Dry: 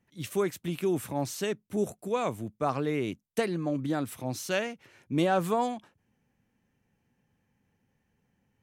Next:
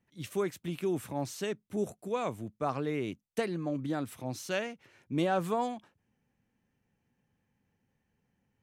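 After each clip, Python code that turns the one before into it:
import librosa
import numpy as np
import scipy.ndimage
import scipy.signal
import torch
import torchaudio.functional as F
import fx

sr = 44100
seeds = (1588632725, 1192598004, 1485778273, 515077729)

y = fx.high_shelf(x, sr, hz=9500.0, db=-5.0)
y = y * 10.0 ** (-3.5 / 20.0)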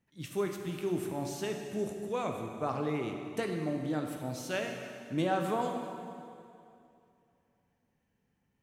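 y = fx.rev_plate(x, sr, seeds[0], rt60_s=2.6, hf_ratio=0.85, predelay_ms=0, drr_db=3.0)
y = y * 10.0 ** (-2.0 / 20.0)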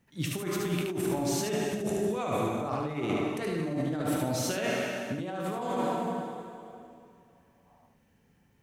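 y = fx.spec_box(x, sr, start_s=7.67, length_s=0.21, low_hz=560.0, high_hz=1300.0, gain_db=10)
y = fx.over_compress(y, sr, threshold_db=-38.0, ratio=-1.0)
y = y + 10.0 ** (-4.0 / 20.0) * np.pad(y, (int(74 * sr / 1000.0), 0))[:len(y)]
y = y * 10.0 ** (6.0 / 20.0)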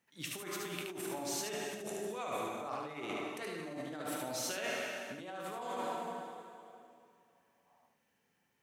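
y = fx.highpass(x, sr, hz=760.0, slope=6)
y = y * 10.0 ** (-4.0 / 20.0)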